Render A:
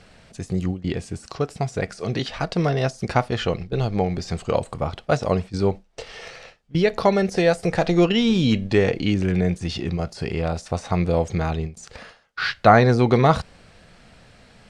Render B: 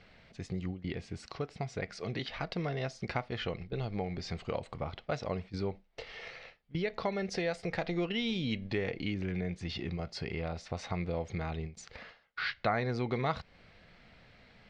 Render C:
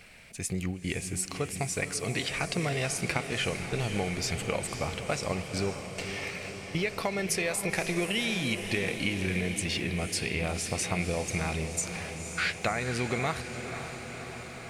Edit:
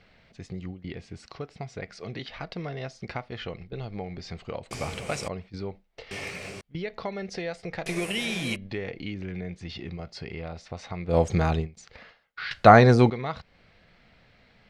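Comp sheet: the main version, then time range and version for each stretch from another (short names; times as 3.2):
B
4.71–5.28 from C
6.11–6.61 from C
7.86–8.56 from C
11.12–11.63 from A, crossfade 0.10 s
12.51–13.1 from A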